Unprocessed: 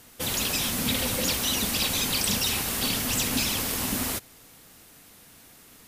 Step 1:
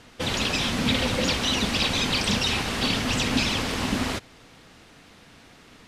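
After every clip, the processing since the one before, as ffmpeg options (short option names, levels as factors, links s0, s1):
-af "lowpass=4200,volume=1.78"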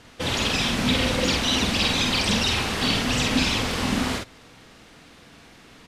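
-filter_complex "[0:a]asplit=2[s0][s1];[s1]adelay=48,volume=0.708[s2];[s0][s2]amix=inputs=2:normalize=0"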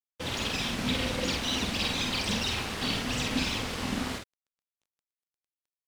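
-af "aeval=exprs='sgn(val(0))*max(abs(val(0))-0.0112,0)':c=same,volume=0.473"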